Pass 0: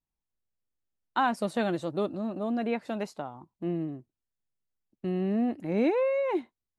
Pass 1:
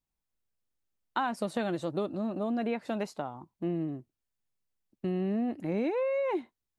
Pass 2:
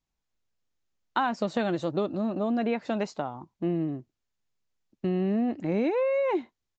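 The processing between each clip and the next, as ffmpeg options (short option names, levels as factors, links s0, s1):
-af "acompressor=threshold=0.0355:ratio=4,volume=1.19"
-af "aresample=16000,aresample=44100,volume=1.58"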